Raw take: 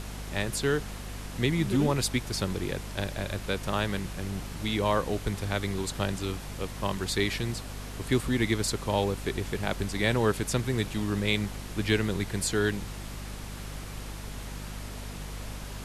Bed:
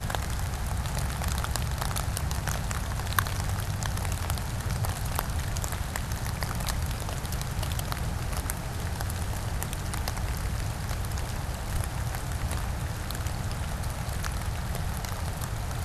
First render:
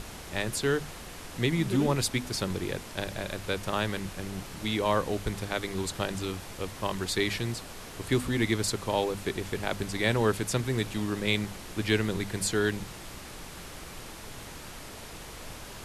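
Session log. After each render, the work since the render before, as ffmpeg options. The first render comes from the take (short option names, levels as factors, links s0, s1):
-af "bandreject=f=50:t=h:w=6,bandreject=f=100:t=h:w=6,bandreject=f=150:t=h:w=6,bandreject=f=200:t=h:w=6,bandreject=f=250:t=h:w=6"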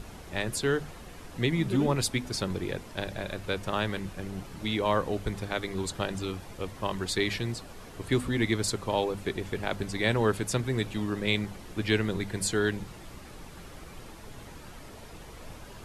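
-af "afftdn=nr=8:nf=-44"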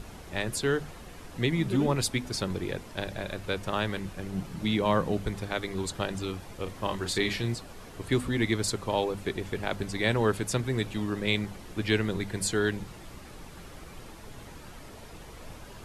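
-filter_complex "[0:a]asettb=1/sr,asplit=3[s0][s1][s2];[s0]atrim=end=4.334[s3];[s1]atrim=start=4.33:end=5.26,asetpts=PTS-STARTPTS,afade=t=in:d=0.004:c=qsin,afade=t=out:st=0.926:d=0.004:c=qsin,equalizer=f=170:w=1.5:g=8[s4];[s2]atrim=start=5.256[s5];[s3][s4]acrossfade=d=0.004:c1=hsin:c2=qsin[s6];[s6][s5]acrossfade=d=0.004:c1=qsin:c2=hsin,asettb=1/sr,asplit=3[s7][s8][s9];[s7]atrim=end=6.634[s10];[s8]atrim=start=6.63:end=7.55,asetpts=PTS-STARTPTS,afade=t=in:d=0.004:c=qsin,afade=t=out:st=0.916:d=0.004:c=qsin,asplit=2[s11][s12];[s12]adelay=34,volume=0.398[s13];[s11][s13]amix=inputs=2:normalize=0,atrim=end_sample=40572[s14];[s9]atrim=start=7.546[s15];[s10][s14]acrossfade=d=0.004:c1=hsin:c2=qsin[s16];[s16][s15]acrossfade=d=0.004:c1=qsin:c2=hsin"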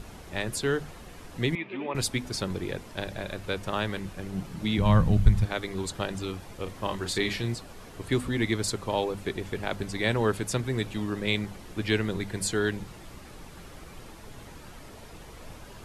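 -filter_complex "[0:a]asettb=1/sr,asplit=3[s0][s1][s2];[s0]atrim=end=1.554[s3];[s1]atrim=start=1.55:end=1.95,asetpts=PTS-STARTPTS,afade=t=in:d=0.004:c=qsin,afade=t=out:st=0.396:d=0.004:c=qsin,highpass=470,equalizer=f=490:t=q:w=4:g=-5,equalizer=f=760:t=q:w=4:g=-4,equalizer=f=1400:t=q:w=4:g=-9,equalizer=f=2400:t=q:w=4:g=9,lowpass=f=2800:w=0.5412,lowpass=f=2800:w=1.3066[s4];[s2]atrim=start=1.946[s5];[s3][s4]acrossfade=d=0.004:c1=hsin:c2=qsin[s6];[s6][s5]acrossfade=d=0.004:c1=qsin:c2=hsin,asplit=3[s7][s8][s9];[s7]afade=t=out:st=4.77:d=0.02[s10];[s8]asubboost=boost=10.5:cutoff=120,afade=t=in:st=4.77:d=0.02,afade=t=out:st=5.44:d=0.02[s11];[s9]afade=t=in:st=5.44:d=0.02[s12];[s10][s11][s12]amix=inputs=3:normalize=0"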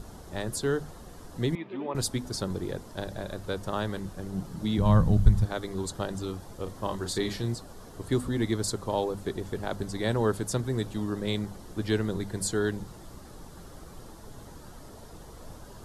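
-af "equalizer=f=2400:w=1.7:g=-13"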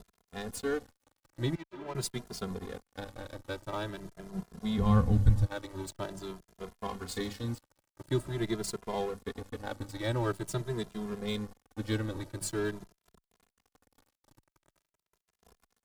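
-filter_complex "[0:a]aeval=exprs='sgn(val(0))*max(abs(val(0))-0.0126,0)':c=same,asplit=2[s0][s1];[s1]adelay=2.5,afreqshift=0.46[s2];[s0][s2]amix=inputs=2:normalize=1"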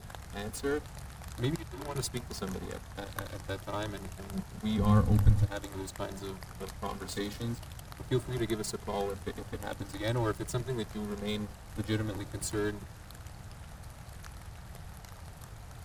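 -filter_complex "[1:a]volume=0.178[s0];[0:a][s0]amix=inputs=2:normalize=0"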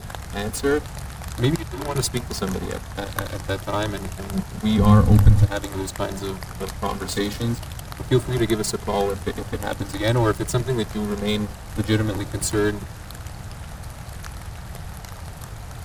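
-af "volume=3.76,alimiter=limit=0.708:level=0:latency=1"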